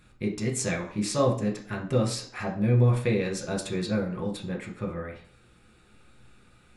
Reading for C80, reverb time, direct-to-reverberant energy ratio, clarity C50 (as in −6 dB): 13.5 dB, 0.50 s, −1.5 dB, 9.0 dB